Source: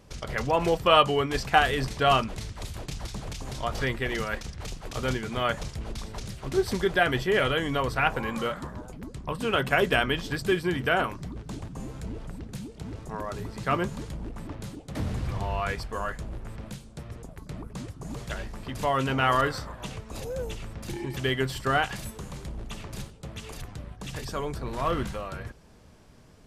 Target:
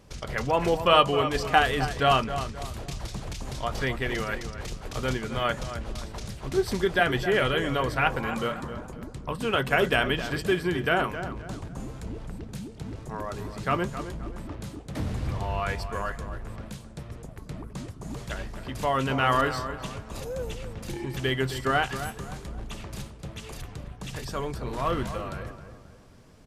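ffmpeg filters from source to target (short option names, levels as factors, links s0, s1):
-filter_complex "[0:a]asplit=2[s0][s1];[s1]adelay=264,lowpass=f=2000:p=1,volume=0.316,asplit=2[s2][s3];[s3]adelay=264,lowpass=f=2000:p=1,volume=0.39,asplit=2[s4][s5];[s5]adelay=264,lowpass=f=2000:p=1,volume=0.39,asplit=2[s6][s7];[s7]adelay=264,lowpass=f=2000:p=1,volume=0.39[s8];[s0][s2][s4][s6][s8]amix=inputs=5:normalize=0"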